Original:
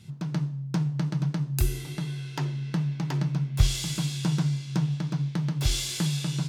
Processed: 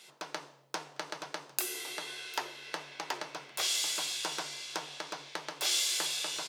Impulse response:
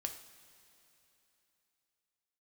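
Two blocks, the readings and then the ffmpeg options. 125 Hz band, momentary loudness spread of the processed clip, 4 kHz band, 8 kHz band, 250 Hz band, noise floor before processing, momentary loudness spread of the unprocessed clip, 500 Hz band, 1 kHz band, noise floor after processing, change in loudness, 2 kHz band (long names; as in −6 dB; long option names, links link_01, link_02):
−36.5 dB, 13 LU, +2.0 dB, +2.0 dB, −22.0 dB, −39 dBFS, 6 LU, −1.5 dB, +2.5 dB, −60 dBFS, −6.0 dB, +2.5 dB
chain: -filter_complex "[0:a]highpass=frequency=470:width=0.5412,highpass=frequency=470:width=1.3066,asplit=2[link_01][link_02];[link_02]acompressor=threshold=-44dB:ratio=6,volume=-1dB[link_03];[link_01][link_03]amix=inputs=2:normalize=0,aecho=1:1:752:0.0794"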